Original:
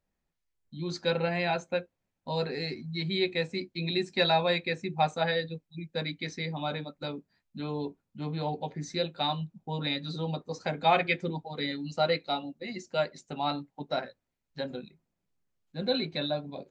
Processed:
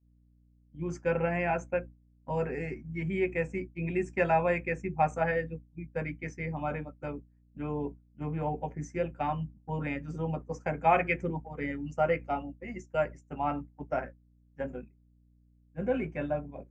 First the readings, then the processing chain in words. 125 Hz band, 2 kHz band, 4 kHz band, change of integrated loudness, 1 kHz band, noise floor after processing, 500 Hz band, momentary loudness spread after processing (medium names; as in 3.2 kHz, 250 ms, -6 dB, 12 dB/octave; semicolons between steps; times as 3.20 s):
0.0 dB, -1.0 dB, -23.0 dB, -1.0 dB, 0.0 dB, -64 dBFS, 0.0 dB, 13 LU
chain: Butterworth band-stop 4 kHz, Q 1.1; hum 60 Hz, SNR 13 dB; expander -34 dBFS